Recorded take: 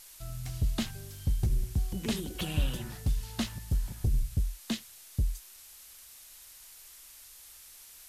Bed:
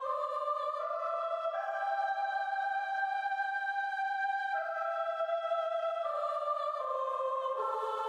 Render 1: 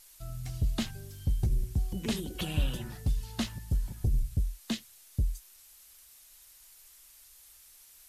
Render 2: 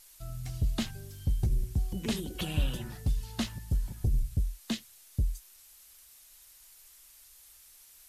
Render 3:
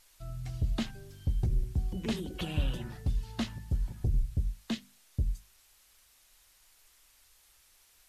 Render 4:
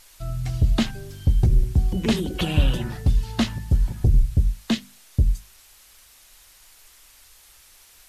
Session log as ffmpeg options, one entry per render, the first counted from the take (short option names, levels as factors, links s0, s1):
-af "afftdn=nr=6:nf=-52"
-af anull
-af "lowpass=f=3400:p=1,bandreject=f=50:t=h:w=6,bandreject=f=100:t=h:w=6,bandreject=f=150:t=h:w=6,bandreject=f=200:t=h:w=6,bandreject=f=250:t=h:w=6"
-af "volume=3.76"